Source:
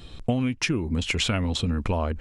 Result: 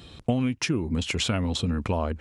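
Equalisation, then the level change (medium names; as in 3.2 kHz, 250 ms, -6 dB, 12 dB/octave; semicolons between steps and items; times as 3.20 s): high-pass 73 Hz; dynamic bell 2.2 kHz, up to -4 dB, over -37 dBFS, Q 1.2; 0.0 dB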